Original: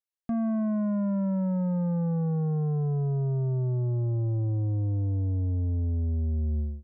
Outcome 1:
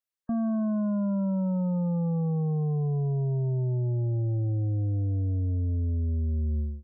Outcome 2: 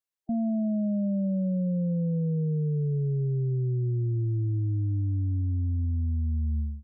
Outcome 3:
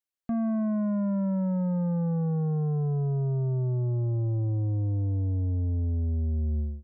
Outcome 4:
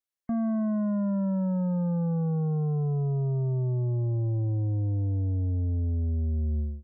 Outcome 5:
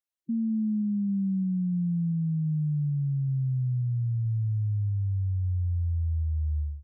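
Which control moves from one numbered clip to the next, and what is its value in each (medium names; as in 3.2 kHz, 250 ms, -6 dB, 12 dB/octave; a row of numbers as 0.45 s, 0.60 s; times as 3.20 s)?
spectral gate, under each frame's peak: -35 dB, -20 dB, -60 dB, -45 dB, -10 dB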